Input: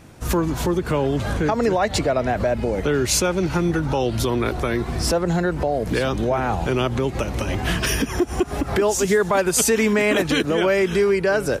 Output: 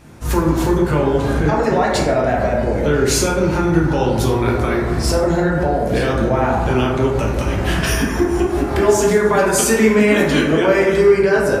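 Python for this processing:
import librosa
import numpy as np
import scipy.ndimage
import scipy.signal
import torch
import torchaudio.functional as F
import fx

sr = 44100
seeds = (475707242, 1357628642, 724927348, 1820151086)

y = fx.rev_plate(x, sr, seeds[0], rt60_s=1.4, hf_ratio=0.3, predelay_ms=0, drr_db=-3.5)
y = y * librosa.db_to_amplitude(-1.0)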